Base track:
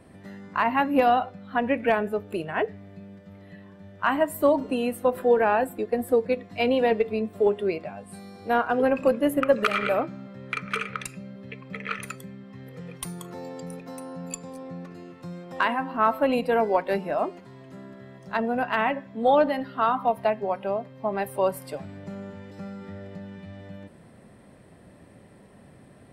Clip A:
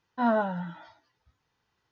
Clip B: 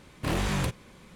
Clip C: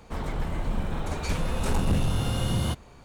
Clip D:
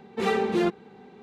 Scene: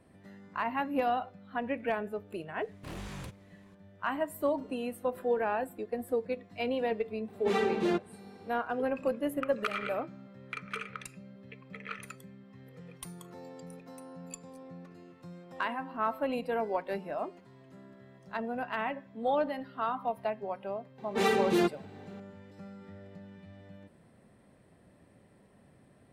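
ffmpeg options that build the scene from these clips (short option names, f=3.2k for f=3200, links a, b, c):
-filter_complex "[4:a]asplit=2[a][b];[0:a]volume=-9.5dB[c];[b]highshelf=f=4.6k:g=8[d];[2:a]atrim=end=1.15,asetpts=PTS-STARTPTS,volume=-14.5dB,afade=t=in:d=0.004:c=hsin,afade=t=out:st=1.146:d=0.004:c=hsin,adelay=2600[e];[a]atrim=end=1.22,asetpts=PTS-STARTPTS,volume=-5dB,afade=t=in:d=0.004:c=hsin,afade=t=out:st=1.216:d=0.004:c=hsin,adelay=7280[f];[d]atrim=end=1.22,asetpts=PTS-STARTPTS,volume=-2.5dB,afade=t=in:d=0.004:c=hsin,afade=t=out:st=1.216:d=0.004:c=hsin,adelay=20980[g];[c][e][f][g]amix=inputs=4:normalize=0"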